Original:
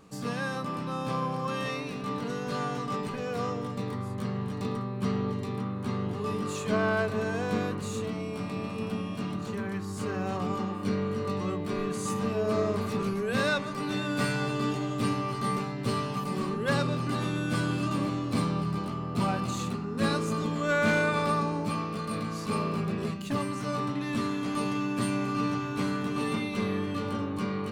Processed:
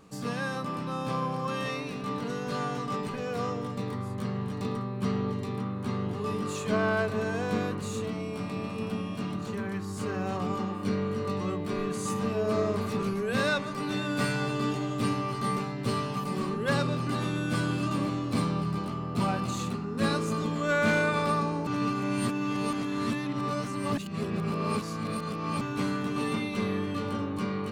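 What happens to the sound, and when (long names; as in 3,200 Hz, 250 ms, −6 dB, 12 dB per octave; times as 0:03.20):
0:21.67–0:25.61: reverse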